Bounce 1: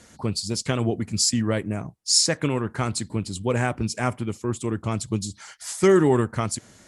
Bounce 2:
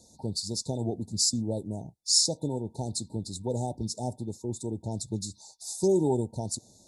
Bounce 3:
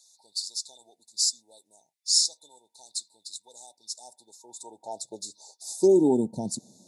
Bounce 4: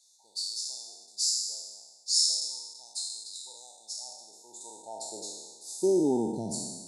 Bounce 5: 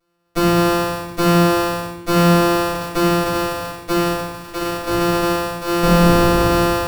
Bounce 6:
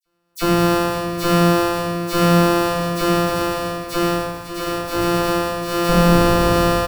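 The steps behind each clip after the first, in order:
FFT band-reject 940–3500 Hz; bell 5900 Hz +3.5 dB 2.4 oct; gain -7 dB
high-pass sweep 2100 Hz -> 190 Hz, 3.83–6.34
spectral trails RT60 1.32 s; gain -6.5 dB
sample sorter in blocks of 256 samples; sample leveller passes 5; reverb RT60 0.95 s, pre-delay 3 ms, DRR -8 dB; gain -2.5 dB
dispersion lows, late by 58 ms, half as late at 2700 Hz; on a send: echo 0.544 s -12 dB; on the sum: gain -1 dB

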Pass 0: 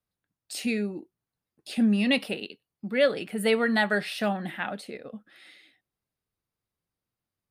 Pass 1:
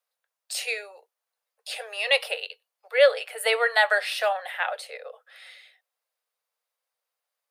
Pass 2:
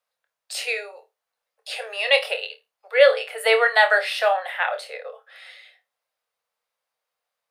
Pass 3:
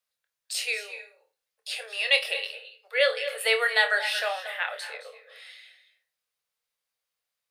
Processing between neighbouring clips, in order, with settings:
steep high-pass 470 Hz 96 dB/oct; gain +5 dB
high shelf 5700 Hz -8 dB; on a send: flutter echo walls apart 4.6 m, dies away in 0.2 s; on the sum: gain +4 dB
bell 740 Hz -12.5 dB 2.4 oct; on a send at -11.5 dB: reverb RT60 0.35 s, pre-delay 0.211 s; on the sum: gain +1 dB

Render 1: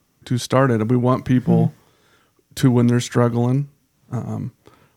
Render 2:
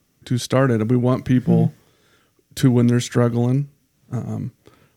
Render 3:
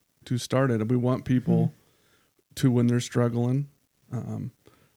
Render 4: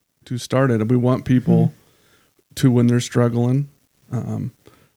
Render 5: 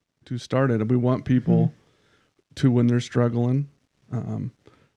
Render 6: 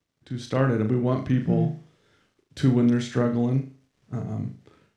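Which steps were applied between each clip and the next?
bell 960 Hz -7 dB 0.69 oct
bit-crush 10-bit; gain -6.5 dB
AGC gain up to 8 dB
air absorption 88 m; gain -4 dB
flutter echo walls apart 6.5 m, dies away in 0.36 s; gain -2.5 dB

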